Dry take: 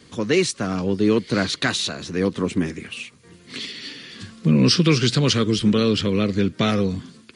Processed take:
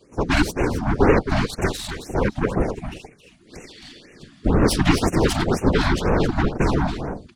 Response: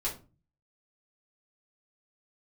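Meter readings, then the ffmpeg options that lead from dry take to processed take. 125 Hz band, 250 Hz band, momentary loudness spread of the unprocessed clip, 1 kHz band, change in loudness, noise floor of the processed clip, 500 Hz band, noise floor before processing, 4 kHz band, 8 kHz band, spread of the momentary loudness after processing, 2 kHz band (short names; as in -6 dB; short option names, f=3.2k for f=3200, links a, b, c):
0.0 dB, -2.0 dB, 17 LU, +6.5 dB, -1.0 dB, -52 dBFS, +0.5 dB, -50 dBFS, -7.0 dB, -3.5 dB, 12 LU, +1.5 dB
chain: -af "equalizer=f=410:w=1.1:g=11.5,aeval=exprs='1.12*(cos(1*acos(clip(val(0)/1.12,-1,1)))-cos(1*PI/2))+0.158*(cos(3*acos(clip(val(0)/1.12,-1,1)))-cos(3*PI/2))+0.2*(cos(8*acos(clip(val(0)/1.12,-1,1)))-cos(8*PI/2))':c=same,afftfilt=real='hypot(re,im)*cos(2*PI*random(0))':imag='hypot(re,im)*sin(2*PI*random(1))':win_size=512:overlap=0.75,aecho=1:1:267:0.355,afftfilt=real='re*(1-between(b*sr/1024,400*pow(4100/400,0.5+0.5*sin(2*PI*2*pts/sr))/1.41,400*pow(4100/400,0.5+0.5*sin(2*PI*2*pts/sr))*1.41))':imag='im*(1-between(b*sr/1024,400*pow(4100/400,0.5+0.5*sin(2*PI*2*pts/sr))/1.41,400*pow(4100/400,0.5+0.5*sin(2*PI*2*pts/sr))*1.41))':win_size=1024:overlap=0.75,volume=1dB"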